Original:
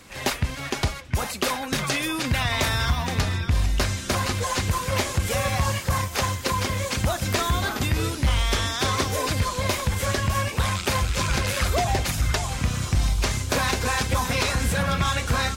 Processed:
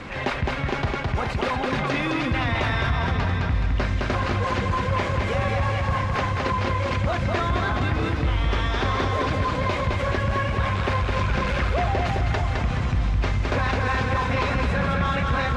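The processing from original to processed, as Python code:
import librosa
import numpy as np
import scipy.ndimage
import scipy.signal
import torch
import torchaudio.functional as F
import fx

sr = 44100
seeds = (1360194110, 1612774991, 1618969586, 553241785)

p1 = scipy.signal.sosfilt(scipy.signal.butter(2, 2400.0, 'lowpass', fs=sr, output='sos'), x)
p2 = p1 + fx.echo_feedback(p1, sr, ms=212, feedback_pct=51, wet_db=-4, dry=0)
p3 = fx.env_flatten(p2, sr, amount_pct=50)
y = p3 * librosa.db_to_amplitude(-3.5)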